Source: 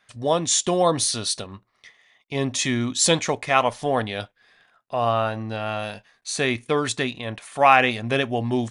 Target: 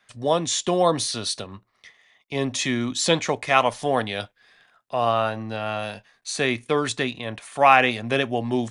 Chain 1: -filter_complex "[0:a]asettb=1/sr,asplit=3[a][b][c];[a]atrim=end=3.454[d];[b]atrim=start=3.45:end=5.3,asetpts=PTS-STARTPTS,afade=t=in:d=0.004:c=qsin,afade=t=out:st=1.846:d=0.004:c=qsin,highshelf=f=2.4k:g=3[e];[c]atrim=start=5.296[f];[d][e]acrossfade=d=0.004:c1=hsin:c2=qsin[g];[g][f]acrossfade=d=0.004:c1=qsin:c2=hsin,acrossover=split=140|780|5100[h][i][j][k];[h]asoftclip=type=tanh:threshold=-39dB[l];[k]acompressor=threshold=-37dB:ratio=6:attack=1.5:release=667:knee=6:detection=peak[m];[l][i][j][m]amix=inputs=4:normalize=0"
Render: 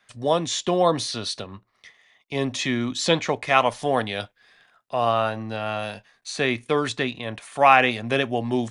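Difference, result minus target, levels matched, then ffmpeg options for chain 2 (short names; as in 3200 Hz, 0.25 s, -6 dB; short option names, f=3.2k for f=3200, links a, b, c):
compressor: peak gain reduction +9.5 dB
-filter_complex "[0:a]asettb=1/sr,asplit=3[a][b][c];[a]atrim=end=3.454[d];[b]atrim=start=3.45:end=5.3,asetpts=PTS-STARTPTS,afade=t=in:d=0.004:c=qsin,afade=t=out:st=1.846:d=0.004:c=qsin,highshelf=f=2.4k:g=3[e];[c]atrim=start=5.296[f];[d][e]acrossfade=d=0.004:c1=hsin:c2=qsin[g];[g][f]acrossfade=d=0.004:c1=qsin:c2=hsin,acrossover=split=140|780|5100[h][i][j][k];[h]asoftclip=type=tanh:threshold=-39dB[l];[k]acompressor=threshold=-25.5dB:ratio=6:attack=1.5:release=667:knee=6:detection=peak[m];[l][i][j][m]amix=inputs=4:normalize=0"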